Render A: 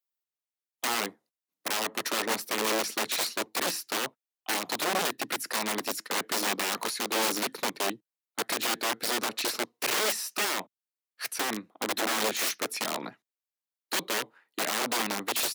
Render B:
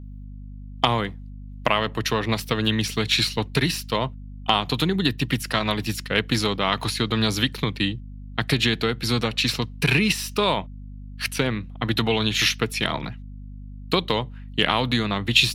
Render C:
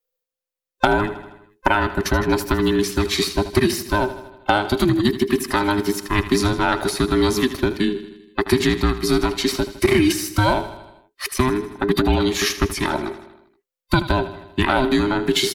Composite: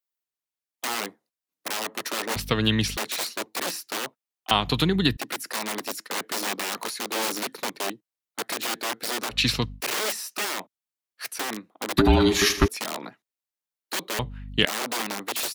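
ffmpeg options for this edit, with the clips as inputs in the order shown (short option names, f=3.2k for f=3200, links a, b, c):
-filter_complex "[1:a]asplit=4[a][b][c][d];[0:a]asplit=6[e][f][g][h][i][j];[e]atrim=end=2.362[k];[a]atrim=start=2.358:end=2.972[l];[f]atrim=start=2.968:end=4.512[m];[b]atrim=start=4.508:end=5.172[n];[g]atrim=start=5.168:end=9.39[o];[c]atrim=start=9.29:end=9.82[p];[h]atrim=start=9.72:end=11.982[q];[2:a]atrim=start=11.978:end=12.682[r];[i]atrim=start=12.678:end=14.192[s];[d]atrim=start=14.188:end=14.652[t];[j]atrim=start=14.648[u];[k][l]acrossfade=d=0.004:c1=hsin:c2=hsin[v];[v][m]acrossfade=d=0.004:c1=hsin:c2=hsin[w];[w][n]acrossfade=d=0.004:c1=hsin:c2=hsin[x];[x][o]acrossfade=d=0.004:c1=hsin:c2=hsin[y];[y][p]acrossfade=d=0.1:c1=tri:c2=tri[z];[z][q]acrossfade=d=0.1:c1=tri:c2=tri[aa];[aa][r]acrossfade=d=0.004:c1=hsin:c2=hsin[ab];[ab][s]acrossfade=d=0.004:c1=hsin:c2=hsin[ac];[ac][t]acrossfade=d=0.004:c1=hsin:c2=hsin[ad];[ad][u]acrossfade=d=0.004:c1=hsin:c2=hsin"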